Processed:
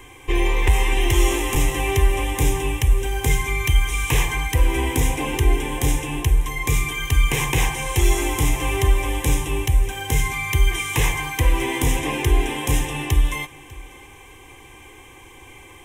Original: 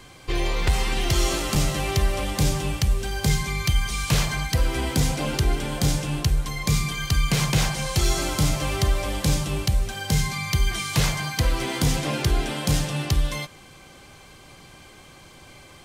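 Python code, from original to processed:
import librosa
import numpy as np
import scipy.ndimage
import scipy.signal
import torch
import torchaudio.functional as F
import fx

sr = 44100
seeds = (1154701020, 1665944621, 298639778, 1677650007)

y = fx.fixed_phaser(x, sr, hz=920.0, stages=8)
y = y + 10.0 ** (-22.0 / 20.0) * np.pad(y, (int(597 * sr / 1000.0), 0))[:len(y)]
y = y * librosa.db_to_amplitude(6.0)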